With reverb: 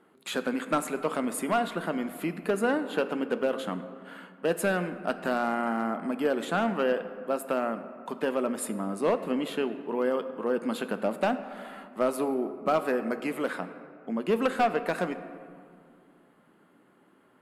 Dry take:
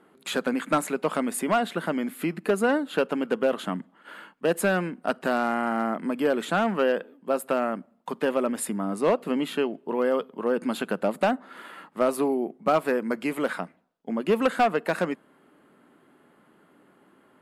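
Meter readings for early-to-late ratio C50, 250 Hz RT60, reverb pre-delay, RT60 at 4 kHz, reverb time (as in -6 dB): 11.5 dB, 2.8 s, 8 ms, 1.1 s, 2.3 s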